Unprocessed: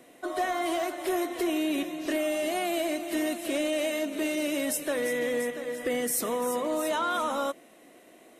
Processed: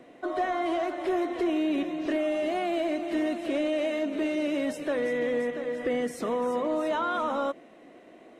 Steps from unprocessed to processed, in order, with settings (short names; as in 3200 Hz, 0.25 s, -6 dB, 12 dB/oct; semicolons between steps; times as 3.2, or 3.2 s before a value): in parallel at -3 dB: limiter -28.5 dBFS, peak gain reduction 8.5 dB; on the sum: tape spacing loss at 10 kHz 22 dB